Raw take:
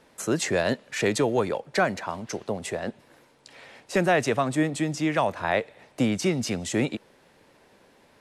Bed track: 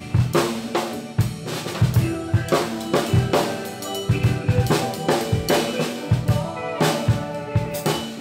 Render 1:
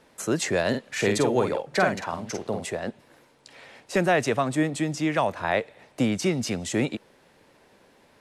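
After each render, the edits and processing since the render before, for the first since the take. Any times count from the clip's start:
0:00.69–0:02.65: double-tracking delay 48 ms −5.5 dB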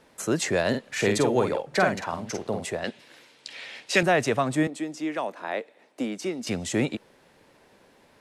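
0:02.84–0:04.03: meter weighting curve D
0:04.67–0:06.47: four-pole ladder high-pass 210 Hz, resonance 30%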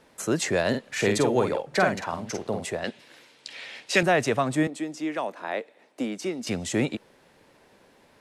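no processing that can be heard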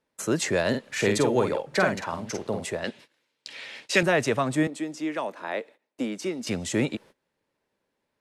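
notch filter 730 Hz, Q 12
noise gate −47 dBFS, range −21 dB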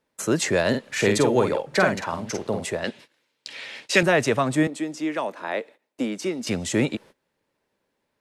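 level +3 dB

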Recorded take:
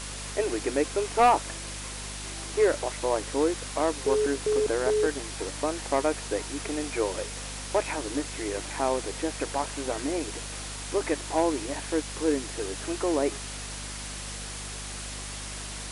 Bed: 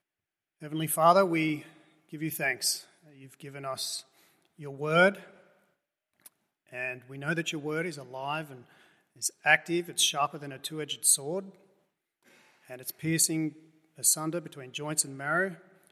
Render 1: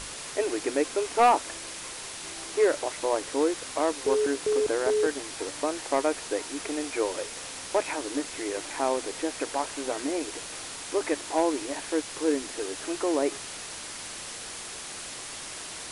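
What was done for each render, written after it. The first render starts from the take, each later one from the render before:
mains-hum notches 50/100/150/200/250 Hz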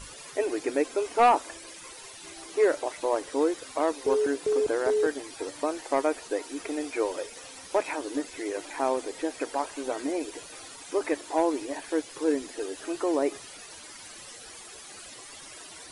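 broadband denoise 13 dB, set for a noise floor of −40 dBFS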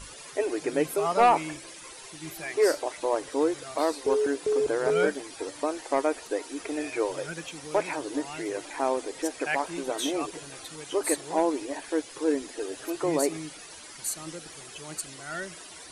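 mix in bed −8 dB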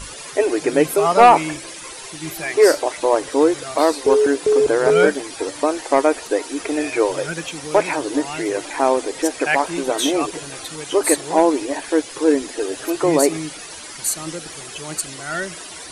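level +10 dB

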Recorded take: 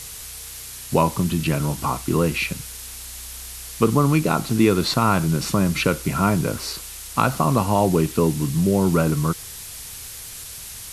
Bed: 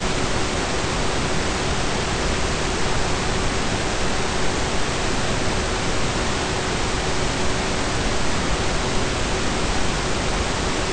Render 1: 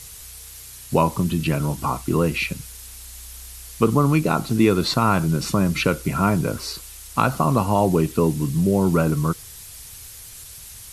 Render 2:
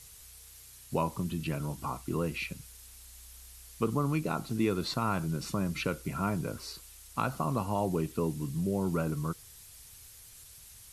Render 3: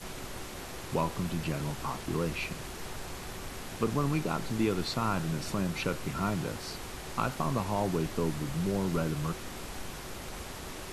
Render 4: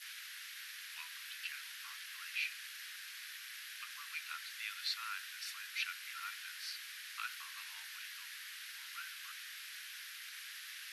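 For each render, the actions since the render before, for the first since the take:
broadband denoise 6 dB, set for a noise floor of −37 dBFS
level −12 dB
mix in bed −19.5 dB
elliptic high-pass filter 1,600 Hz, stop band 70 dB; parametric band 7,500 Hz −9 dB 0.64 octaves

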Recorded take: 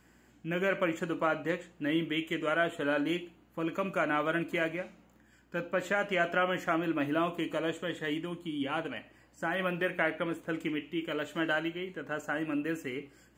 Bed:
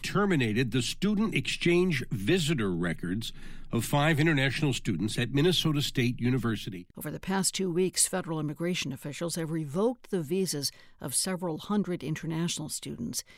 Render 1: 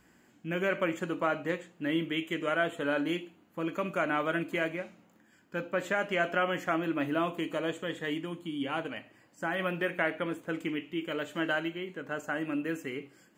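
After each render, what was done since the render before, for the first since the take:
hum removal 60 Hz, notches 2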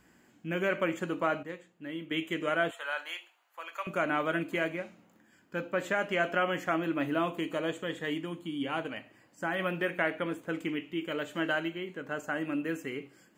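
0:01.43–0:02.11: clip gain −9 dB
0:02.71–0:03.87: high-pass filter 750 Hz 24 dB per octave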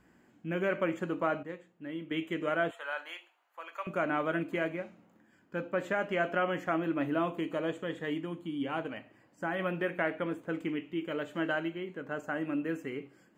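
high-shelf EQ 2,500 Hz −9.5 dB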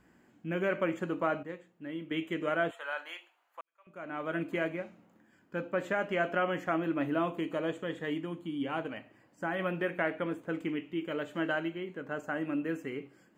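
0:03.61–0:04.44: fade in quadratic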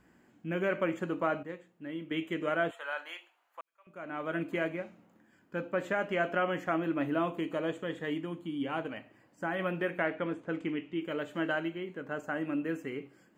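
0:10.05–0:11.02: low-pass filter 6,800 Hz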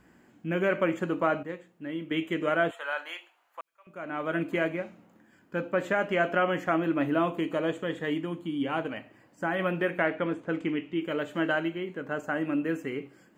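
level +4.5 dB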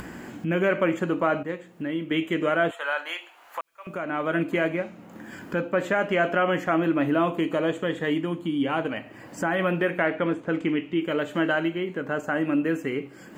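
in parallel at −1.5 dB: brickwall limiter −22 dBFS, peak gain reduction 10.5 dB
on the sum: upward compression, threshold −26 dBFS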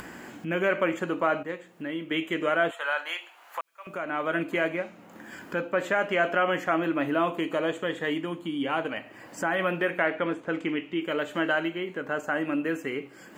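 low-shelf EQ 300 Hz −9.5 dB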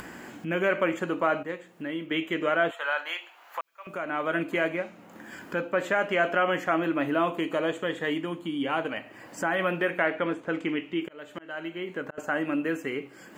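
0:02.06–0:03.89: parametric band 9,300 Hz −7.5 dB 0.63 octaves
0:11.01–0:12.18: volume swells 559 ms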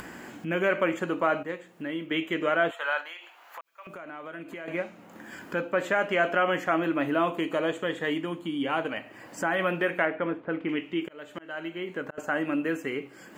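0:03.01–0:04.68: downward compressor 3 to 1, threshold −40 dBFS
0:10.05–0:10.69: high-frequency loss of the air 370 metres

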